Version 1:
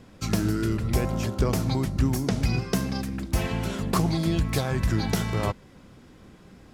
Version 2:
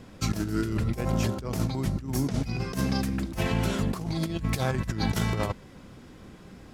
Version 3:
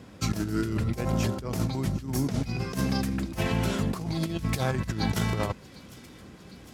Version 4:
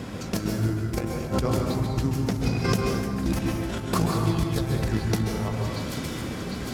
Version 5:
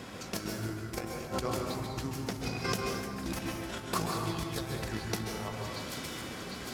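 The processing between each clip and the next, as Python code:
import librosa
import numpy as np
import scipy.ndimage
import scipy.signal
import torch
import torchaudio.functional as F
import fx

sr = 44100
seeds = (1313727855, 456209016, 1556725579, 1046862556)

y1 = fx.over_compress(x, sr, threshold_db=-27.0, ratio=-0.5)
y2 = scipy.signal.sosfilt(scipy.signal.butter(2, 50.0, 'highpass', fs=sr, output='sos'), y1)
y2 = fx.echo_wet_highpass(y2, sr, ms=754, feedback_pct=71, hz=2700.0, wet_db=-17)
y3 = fx.over_compress(y2, sr, threshold_db=-34.0, ratio=-0.5)
y3 = fx.rev_plate(y3, sr, seeds[0], rt60_s=1.7, hf_ratio=0.5, predelay_ms=120, drr_db=0.0)
y3 = y3 * 10.0 ** (6.0 / 20.0)
y4 = fx.low_shelf(y3, sr, hz=380.0, db=-10.5)
y4 = fx.comb_fb(y4, sr, f0_hz=370.0, decay_s=0.6, harmonics='all', damping=0.0, mix_pct=60)
y4 = y4 * 10.0 ** (4.0 / 20.0)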